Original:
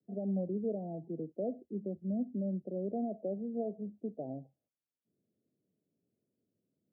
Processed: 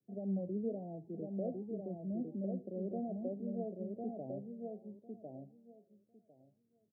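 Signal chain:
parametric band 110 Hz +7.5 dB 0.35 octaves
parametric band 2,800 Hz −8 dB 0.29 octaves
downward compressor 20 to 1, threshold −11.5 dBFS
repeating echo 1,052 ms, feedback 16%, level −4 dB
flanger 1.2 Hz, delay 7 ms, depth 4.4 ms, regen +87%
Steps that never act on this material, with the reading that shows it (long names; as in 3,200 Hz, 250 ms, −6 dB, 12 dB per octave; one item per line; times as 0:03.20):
parametric band 2,800 Hz: nothing at its input above 760 Hz
downward compressor, threshold −11.5 dBFS: peak of its input −24.5 dBFS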